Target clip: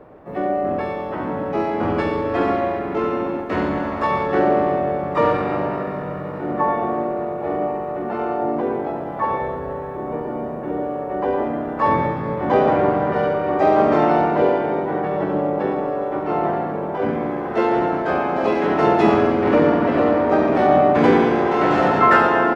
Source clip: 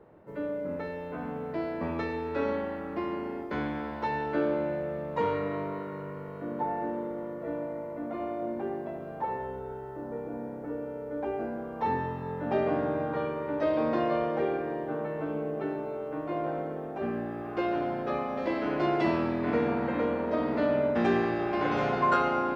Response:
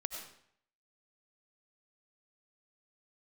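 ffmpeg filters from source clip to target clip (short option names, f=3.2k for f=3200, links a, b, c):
-filter_complex "[0:a]bandreject=f=60:t=h:w=6,bandreject=f=120:t=h:w=6,bandreject=f=180:t=h:w=6,bandreject=f=240:t=h:w=6,bandreject=f=300:t=h:w=6,bandreject=f=360:t=h:w=6,bandreject=f=420:t=h:w=6,asplit=4[a][b][c][d];[b]asetrate=29433,aresample=44100,atempo=1.49831,volume=-9dB[e];[c]asetrate=55563,aresample=44100,atempo=0.793701,volume=0dB[f];[d]asetrate=88200,aresample=44100,atempo=0.5,volume=-13dB[g];[a][e][f][g]amix=inputs=4:normalize=0,asplit=2[h][i];[1:a]atrim=start_sample=2205,lowpass=2.3k[j];[i][j]afir=irnorm=-1:irlink=0,volume=-0.5dB[k];[h][k]amix=inputs=2:normalize=0,volume=3dB"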